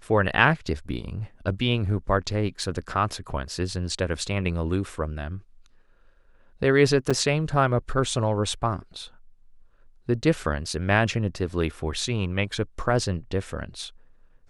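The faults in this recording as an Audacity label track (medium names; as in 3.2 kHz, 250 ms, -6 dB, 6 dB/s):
2.630000	2.630000	dropout 2.7 ms
7.100000	7.110000	dropout 5.5 ms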